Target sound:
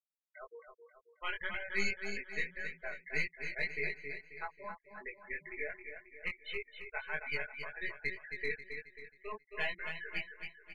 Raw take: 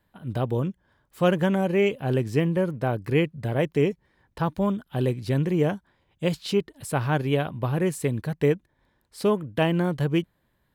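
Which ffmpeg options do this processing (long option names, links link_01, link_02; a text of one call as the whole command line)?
ffmpeg -i in.wav -filter_complex "[0:a]bandpass=frequency=2100:width_type=q:width=5.7:csg=0,aeval=exprs='val(0)+0.000251*(sin(2*PI*60*n/s)+sin(2*PI*2*60*n/s)/2+sin(2*PI*3*60*n/s)/3+sin(2*PI*4*60*n/s)/4+sin(2*PI*5*60*n/s)/5)':channel_layout=same,aeval=exprs='(tanh(79.4*val(0)+0.75)-tanh(0.75))/79.4':channel_layout=same,afftfilt=real='re*gte(hypot(re,im),0.00631)':imag='im*gte(hypot(re,im),0.00631)':win_size=1024:overlap=0.75,asplit=2[link_01][link_02];[link_02]acrusher=bits=4:mix=0:aa=0.5,volume=-8.5dB[link_03];[link_01][link_03]amix=inputs=2:normalize=0,aecho=1:1:4.7:0.81,asplit=2[link_04][link_05];[link_05]aecho=0:1:269|538|807|1076|1345:0.447|0.197|0.0865|0.0381|0.0167[link_06];[link_04][link_06]amix=inputs=2:normalize=0,flanger=delay=19:depth=2.6:speed=1.8,volume=11dB" out.wav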